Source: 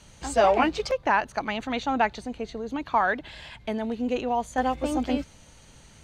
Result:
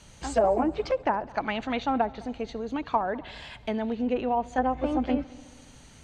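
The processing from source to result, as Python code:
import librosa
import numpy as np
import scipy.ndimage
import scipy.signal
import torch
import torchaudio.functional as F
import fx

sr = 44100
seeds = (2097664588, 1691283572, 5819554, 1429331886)

y = fx.env_lowpass_down(x, sr, base_hz=650.0, full_db=-18.0)
y = fx.echo_heads(y, sr, ms=69, heads='first and third', feedback_pct=56, wet_db=-24)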